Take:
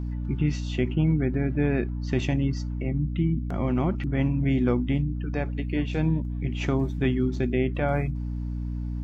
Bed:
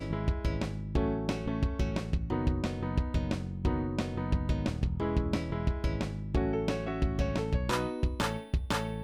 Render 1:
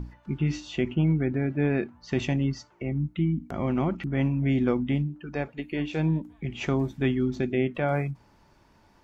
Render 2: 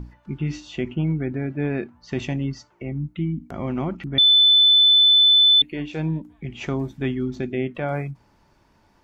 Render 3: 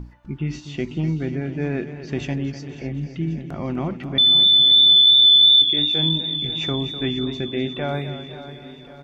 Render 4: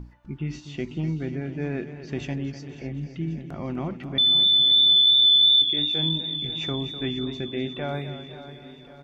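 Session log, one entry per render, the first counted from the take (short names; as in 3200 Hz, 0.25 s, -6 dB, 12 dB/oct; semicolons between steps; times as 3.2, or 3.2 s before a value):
notches 60/120/180/240/300 Hz
4.18–5.62 bleep 3510 Hz -11 dBFS
feedback echo 0.541 s, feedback 58%, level -14 dB; warbling echo 0.249 s, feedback 60%, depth 70 cents, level -12 dB
gain -4.5 dB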